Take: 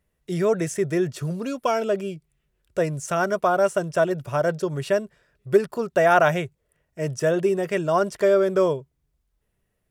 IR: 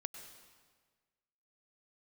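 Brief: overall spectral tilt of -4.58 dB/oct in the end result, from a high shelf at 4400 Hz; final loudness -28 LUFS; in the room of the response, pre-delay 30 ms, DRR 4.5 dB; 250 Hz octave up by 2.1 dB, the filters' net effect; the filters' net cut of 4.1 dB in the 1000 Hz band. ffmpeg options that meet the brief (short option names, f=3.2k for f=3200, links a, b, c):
-filter_complex "[0:a]equalizer=f=250:t=o:g=4.5,equalizer=f=1k:t=o:g=-6.5,highshelf=f=4.4k:g=-8.5,asplit=2[a][b];[1:a]atrim=start_sample=2205,adelay=30[c];[b][c]afir=irnorm=-1:irlink=0,volume=-2dB[d];[a][d]amix=inputs=2:normalize=0,volume=-5.5dB"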